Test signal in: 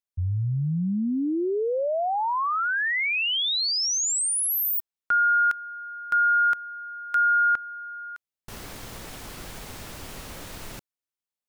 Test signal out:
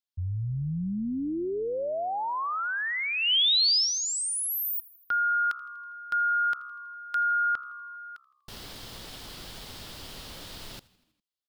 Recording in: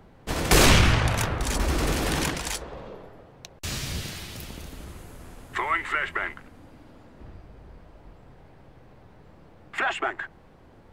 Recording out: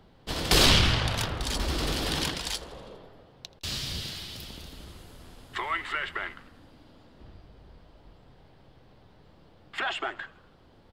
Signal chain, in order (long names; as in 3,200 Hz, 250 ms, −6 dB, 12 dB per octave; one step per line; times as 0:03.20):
flat-topped bell 3,900 Hz +8 dB 1 octave
echo with shifted repeats 81 ms, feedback 64%, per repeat −66 Hz, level −22 dB
level −5 dB